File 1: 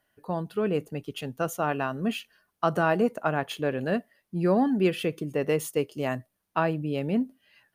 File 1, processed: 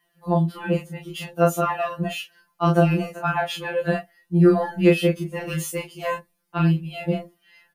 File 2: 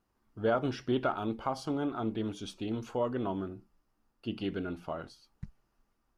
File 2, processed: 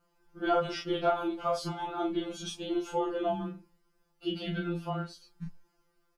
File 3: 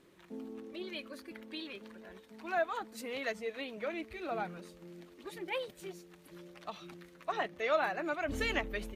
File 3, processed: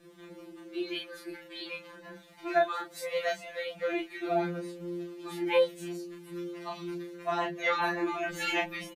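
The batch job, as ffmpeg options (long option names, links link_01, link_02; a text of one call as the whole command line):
ffmpeg -i in.wav -filter_complex "[0:a]asplit=2[link_01][link_02];[link_02]adelay=31,volume=-3dB[link_03];[link_01][link_03]amix=inputs=2:normalize=0,aeval=exprs='0.447*(cos(1*acos(clip(val(0)/0.447,-1,1)))-cos(1*PI/2))+0.00631*(cos(2*acos(clip(val(0)/0.447,-1,1)))-cos(2*PI/2))':channel_layout=same,afftfilt=real='re*2.83*eq(mod(b,8),0)':imag='im*2.83*eq(mod(b,8),0)':win_size=2048:overlap=0.75,volume=6dB" out.wav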